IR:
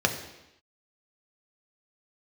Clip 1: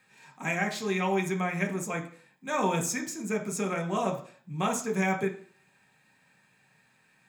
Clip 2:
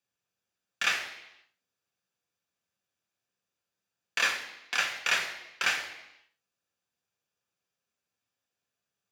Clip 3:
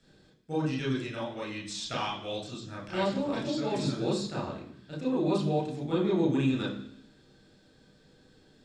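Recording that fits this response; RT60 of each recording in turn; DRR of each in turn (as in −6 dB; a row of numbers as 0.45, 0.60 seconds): 2; 0.50, 0.90, 0.65 seconds; 1.5, 3.5, −5.5 decibels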